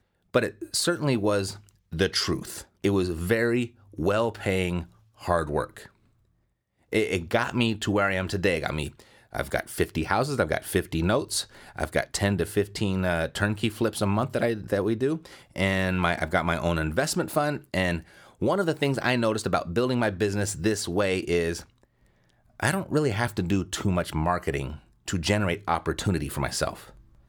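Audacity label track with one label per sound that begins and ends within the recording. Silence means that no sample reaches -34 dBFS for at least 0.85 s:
6.930000	21.610000	sound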